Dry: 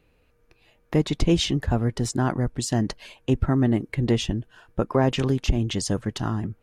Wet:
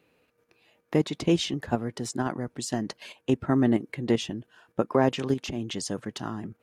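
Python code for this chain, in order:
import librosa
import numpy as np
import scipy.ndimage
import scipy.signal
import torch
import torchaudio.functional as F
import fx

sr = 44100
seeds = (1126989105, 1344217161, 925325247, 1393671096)

p1 = scipy.signal.sosfilt(scipy.signal.butter(2, 180.0, 'highpass', fs=sr, output='sos'), x)
p2 = fx.level_steps(p1, sr, step_db=23)
p3 = p1 + (p2 * 10.0 ** (2.5 / 20.0))
y = p3 * 10.0 ** (-6.0 / 20.0)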